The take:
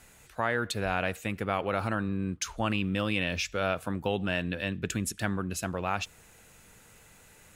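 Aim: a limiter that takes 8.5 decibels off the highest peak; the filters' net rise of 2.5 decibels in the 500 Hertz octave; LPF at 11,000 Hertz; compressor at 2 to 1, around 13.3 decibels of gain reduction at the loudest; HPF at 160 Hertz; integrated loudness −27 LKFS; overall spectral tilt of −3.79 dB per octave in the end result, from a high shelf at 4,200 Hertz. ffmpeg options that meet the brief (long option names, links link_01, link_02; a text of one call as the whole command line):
ffmpeg -i in.wav -af "highpass=160,lowpass=11000,equalizer=frequency=500:width_type=o:gain=3,highshelf=frequency=4200:gain=4.5,acompressor=threshold=-48dB:ratio=2,volume=19dB,alimiter=limit=-14dB:level=0:latency=1" out.wav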